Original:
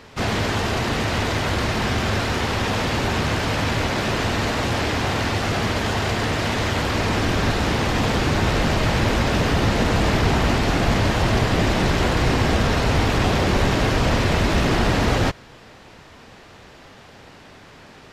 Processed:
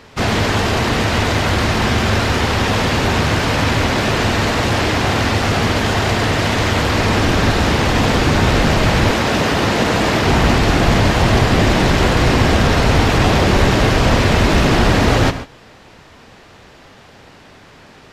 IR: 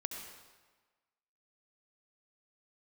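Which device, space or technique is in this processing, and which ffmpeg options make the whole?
keyed gated reverb: -filter_complex "[0:a]asplit=3[link_01][link_02][link_03];[1:a]atrim=start_sample=2205[link_04];[link_02][link_04]afir=irnorm=-1:irlink=0[link_05];[link_03]apad=whole_len=799099[link_06];[link_05][link_06]sidechaingate=range=-33dB:threshold=-35dB:ratio=16:detection=peak,volume=-3.5dB[link_07];[link_01][link_07]amix=inputs=2:normalize=0,asettb=1/sr,asplit=3[link_08][link_09][link_10];[link_08]atrim=end=9.114[link_11];[link_09]atrim=start=9.11:end=10.28,asetpts=PTS-STARTPTS,afade=type=in:duration=0.004:curve=qsin,afade=type=out:start_time=1.166:duration=0.004:curve=qsin,highpass=frequency=190:poles=1[link_12];[link_10]atrim=start=10.276[link_13];[link_11][link_12]acrossfade=duration=0.004:curve1=hsin:curve2=qsin[link_14];[link_14][link_13]acrossfade=duration=0.004:curve1=qsin:curve2=hsin,volume=2dB"

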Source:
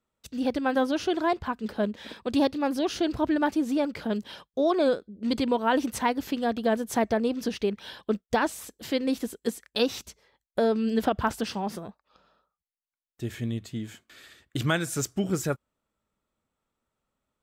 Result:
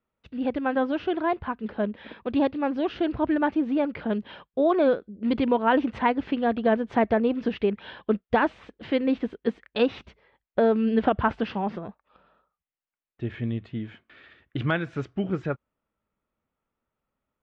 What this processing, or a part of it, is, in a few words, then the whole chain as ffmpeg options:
action camera in a waterproof case: -af "lowpass=frequency=2900:width=0.5412,lowpass=frequency=2900:width=1.3066,dynaudnorm=framelen=460:gausssize=17:maxgain=3dB" -ar 48000 -c:a aac -b:a 96k

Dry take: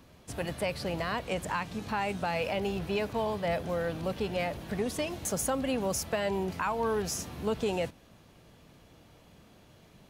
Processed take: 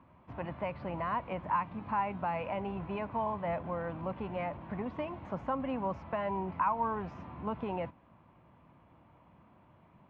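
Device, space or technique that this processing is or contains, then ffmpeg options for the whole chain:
bass cabinet: -af "highpass=63,equalizer=frequency=440:width_type=q:width=4:gain=-8,equalizer=frequency=1000:width_type=q:width=4:gain=10,equalizer=frequency=1700:width_type=q:width=4:gain=-5,lowpass=frequency=2200:width=0.5412,lowpass=frequency=2200:width=1.3066,volume=-3.5dB"

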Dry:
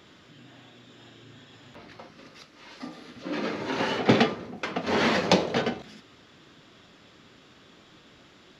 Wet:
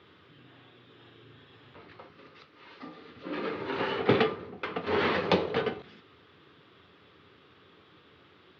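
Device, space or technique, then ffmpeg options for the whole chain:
guitar cabinet: -af "highpass=86,equalizer=frequency=87:width_type=q:width=4:gain=9,equalizer=frequency=230:width_type=q:width=4:gain=-6,equalizer=frequency=430:width_type=q:width=4:gain=6,equalizer=frequency=640:width_type=q:width=4:gain=-5,equalizer=frequency=1200:width_type=q:width=4:gain=4,lowpass=frequency=3900:width=0.5412,lowpass=frequency=3900:width=1.3066,volume=-4dB"

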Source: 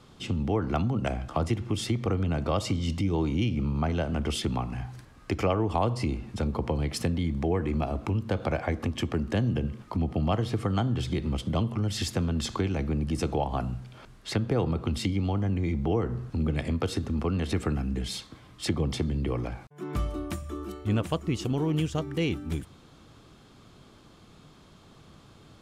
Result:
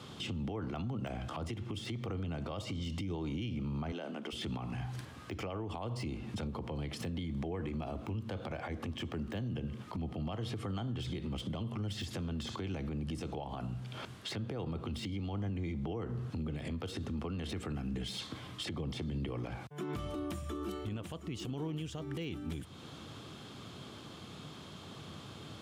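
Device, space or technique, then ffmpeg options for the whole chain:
broadcast voice chain: -filter_complex "[0:a]highpass=frequency=76:width=0.5412,highpass=frequency=76:width=1.3066,deesser=1,acompressor=threshold=-41dB:ratio=3,equalizer=frequency=3200:width_type=o:width=0.51:gain=5,alimiter=level_in=11.5dB:limit=-24dB:level=0:latency=1:release=41,volume=-11.5dB,asettb=1/sr,asplit=3[link_01][link_02][link_03];[link_01]atrim=end=3.924[link_04];[link_02]atrim=start=3.92:end=4.33,asetpts=PTS-STARTPTS,afade=type=in:duration=0.004:curve=qsin,afade=type=out:start_time=0.406:duration=0.004:curve=qsin,highpass=frequency=220:width=0.5412,highpass=frequency=220:width=1.3066[link_05];[link_03]atrim=start=4.326[link_06];[link_04][link_05]acrossfade=duration=0.004:curve1=hsin:curve2=qsin[link_07];[link_07][link_06]acrossfade=duration=0.004:curve1=qsin:curve2=hsin,volume=5dB"

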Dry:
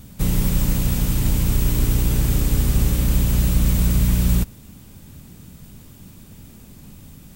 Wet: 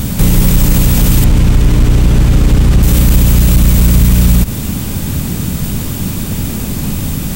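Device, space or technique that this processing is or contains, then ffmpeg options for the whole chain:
loud club master: -filter_complex "[0:a]acompressor=threshold=-20dB:ratio=2,asoftclip=type=hard:threshold=-16dB,alimiter=level_in=26.5dB:limit=-1dB:release=50:level=0:latency=1,asettb=1/sr,asplit=3[link_01][link_02][link_03];[link_01]atrim=end=1.244[link_04];[link_02]atrim=start=1.24:end=2.83,asetpts=PTS-STARTPTS,afade=type=in:duration=0.004:curve=qsin,afade=type=out:start_time=1.586:duration=0.004:curve=qsin,aemphasis=mode=reproduction:type=50fm[link_05];[link_03]atrim=start=2.826[link_06];[link_04][link_05]acrossfade=duration=0.004:curve1=hsin:curve2=qsin[link_07];[link_07][link_06]acrossfade=duration=0.004:curve1=qsin:curve2=hsin,volume=-1dB"

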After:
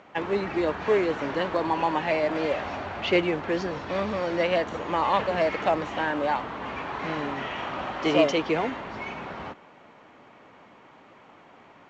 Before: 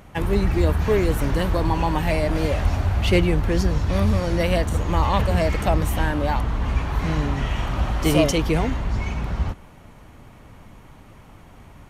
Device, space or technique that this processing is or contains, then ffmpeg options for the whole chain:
telephone: -af "highpass=340,lowpass=3300" -ar 16000 -c:a pcm_mulaw

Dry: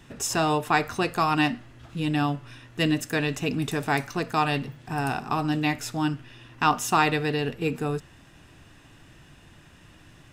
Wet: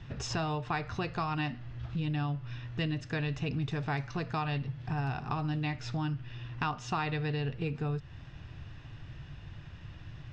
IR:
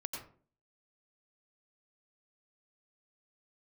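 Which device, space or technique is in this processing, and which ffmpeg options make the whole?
jukebox: -af "lowpass=frequency=5400:width=0.5412,lowpass=frequency=5400:width=1.3066,lowpass=7500,lowshelf=frequency=170:width_type=q:width=1.5:gain=9,acompressor=threshold=-31dB:ratio=3,volume=-1.5dB"

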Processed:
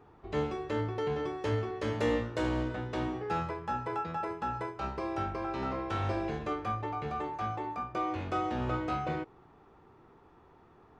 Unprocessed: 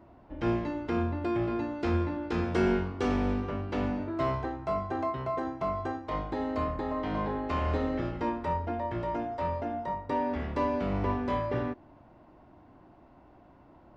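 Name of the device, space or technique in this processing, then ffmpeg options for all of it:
nightcore: -af "asetrate=56007,aresample=44100,volume=-3dB"

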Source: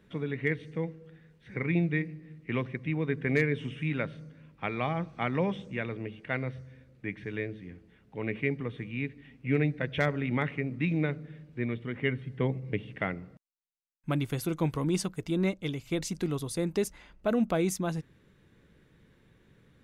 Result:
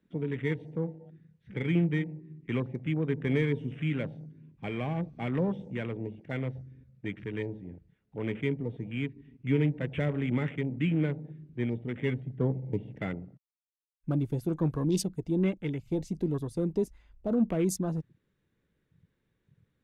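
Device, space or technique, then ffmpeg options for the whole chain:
one-band saturation: -filter_complex "[0:a]acrossover=split=480|2900[link_01][link_02][link_03];[link_02]asoftclip=type=tanh:threshold=-39.5dB[link_04];[link_01][link_04][link_03]amix=inputs=3:normalize=0,afwtdn=0.00708,asettb=1/sr,asplit=3[link_05][link_06][link_07];[link_05]atrim=end=3.994[link_08];[link_06]atrim=start=3.99:end=5.28,asetpts=PTS-STARTPTS,afade=type=in:duration=0.004:curve=qsin,afade=type=out:start_time=1.286:duration=0.004:curve=qsin,bandreject=frequency=1300:width=6.2[link_09];[link_07]atrim=start=5.276[link_10];[link_08][link_09]acrossfade=duration=0.004:curve1=hsin:curve2=qsin[link_11];[link_11][link_10]acrossfade=duration=0.004:curve1=qsin:curve2=hsin,volume=1.5dB"

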